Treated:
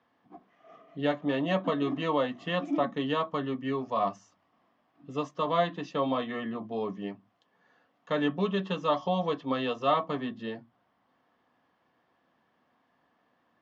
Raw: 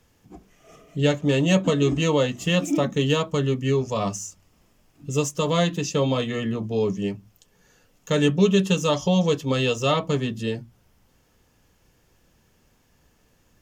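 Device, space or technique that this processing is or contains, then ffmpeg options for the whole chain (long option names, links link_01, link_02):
kitchen radio: -af "highpass=230,equalizer=frequency=260:width_type=q:width=4:gain=5,equalizer=frequency=420:width_type=q:width=4:gain=-4,equalizer=frequency=710:width_type=q:width=4:gain=9,equalizer=frequency=1100:width_type=q:width=4:gain=10,equalizer=frequency=1800:width_type=q:width=4:gain=4,equalizer=frequency=2600:width_type=q:width=4:gain=-5,lowpass=frequency=3700:width=0.5412,lowpass=frequency=3700:width=1.3066,volume=-7.5dB"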